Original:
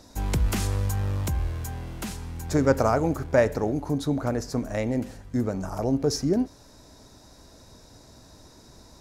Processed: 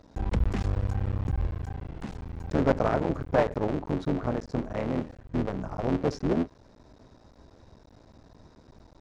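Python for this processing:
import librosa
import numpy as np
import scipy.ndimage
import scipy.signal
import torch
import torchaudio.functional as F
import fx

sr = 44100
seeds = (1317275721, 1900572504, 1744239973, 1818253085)

y = fx.cycle_switch(x, sr, every=3, mode='muted')
y = fx.spacing_loss(y, sr, db_at_10k=25)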